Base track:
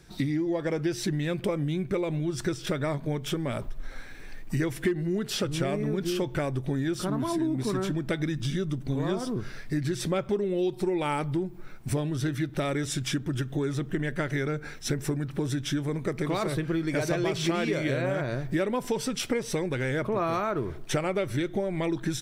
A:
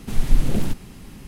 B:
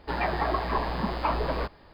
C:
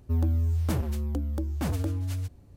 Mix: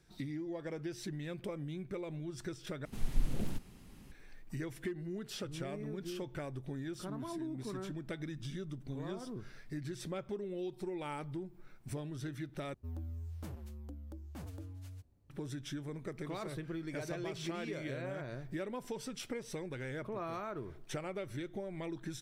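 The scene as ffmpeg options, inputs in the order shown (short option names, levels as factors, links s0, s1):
-filter_complex "[0:a]volume=0.224,asplit=3[s0][s1][s2];[s0]atrim=end=2.854[s3];[1:a]atrim=end=1.27,asetpts=PTS-STARTPTS,volume=0.188[s4];[s1]atrim=start=4.116:end=12.744[s5];[3:a]atrim=end=2.56,asetpts=PTS-STARTPTS,volume=0.133[s6];[s2]atrim=start=15.296[s7];[s3][s4]acrossfade=d=0.004:c1=hsin:c2=hsin[s8];[s8][s5]acrossfade=d=0.004:c1=hsin:c2=hsin[s9];[s9][s6]acrossfade=d=0.004:c1=hsin:c2=hsin[s10];[s10][s7]acrossfade=d=0.004:c1=hsin:c2=hsin"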